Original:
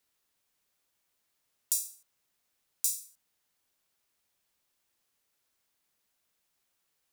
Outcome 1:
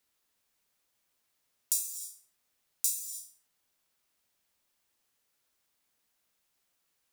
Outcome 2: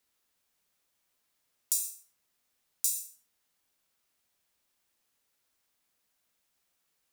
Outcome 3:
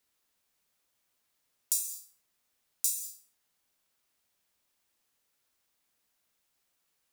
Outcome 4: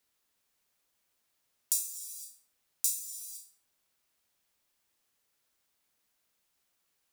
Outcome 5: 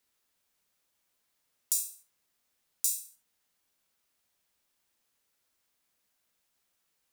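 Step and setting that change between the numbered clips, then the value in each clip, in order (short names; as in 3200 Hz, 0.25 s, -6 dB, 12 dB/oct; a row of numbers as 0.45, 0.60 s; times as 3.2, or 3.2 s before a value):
non-linear reverb, gate: 340, 140, 230, 530, 90 ms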